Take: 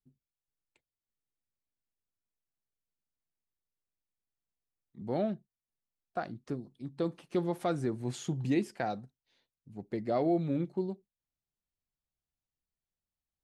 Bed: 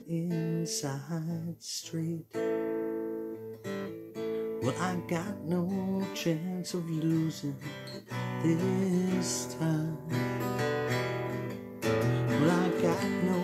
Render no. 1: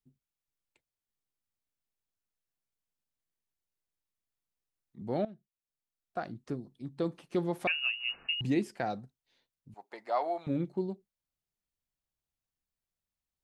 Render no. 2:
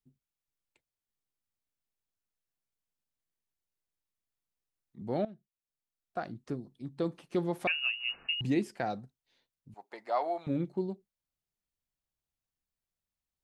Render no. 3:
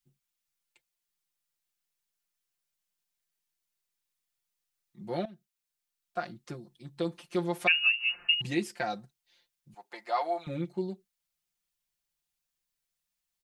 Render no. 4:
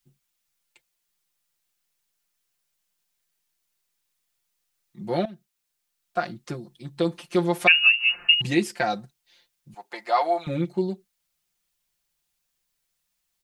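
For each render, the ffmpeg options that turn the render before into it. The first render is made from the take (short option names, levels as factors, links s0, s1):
-filter_complex "[0:a]asettb=1/sr,asplit=3[s0][s1][s2];[s0]atrim=end=7.674[s3];[s1]atrim=start=7.67:end=8.41,asetpts=PTS-STARTPTS,afade=t=in:d=0.004:c=qsin,afade=t=out:st=0.736:d=0.004:c=qsin,lowpass=f=2600:t=q:w=0.5098,lowpass=f=2600:t=q:w=0.6013,lowpass=f=2600:t=q:w=0.9,lowpass=f=2600:t=q:w=2.563,afreqshift=-3000[s4];[s2]atrim=start=8.406[s5];[s3][s4]acrossfade=d=0.004:c1=hsin:c2=qsin[s6];[s6][s5]acrossfade=d=0.004:c1=qsin:c2=hsin,asettb=1/sr,asplit=3[s7][s8][s9];[s7]atrim=end=9.744[s10];[s8]atrim=start=9.74:end=10.47,asetpts=PTS-STARTPTS,afade=t=in:d=0.004:c=qsin,afade=t=out:st=0.726:d=0.004:c=qsin,highpass=f=900:t=q:w=3.2[s11];[s9]atrim=start=10.466[s12];[s10][s11]acrossfade=d=0.004:c1=hsin:c2=qsin[s13];[s13][s12]acrossfade=d=0.004:c1=qsin:c2=hsin,asplit=2[s14][s15];[s14]atrim=end=5.25,asetpts=PTS-STARTPTS,afade=t=out:st=5.246:d=0.004:c=hsin:silence=0.158489[s16];[s15]atrim=start=5.25,asetpts=PTS-STARTPTS,afade=t=in:d=1.08:silence=0.158489[s17];[s16][s17]concat=n=2:v=0:a=1"
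-af anull
-af "tiltshelf=f=1100:g=-5.5,aecho=1:1:5.7:0.85"
-af "volume=2.51"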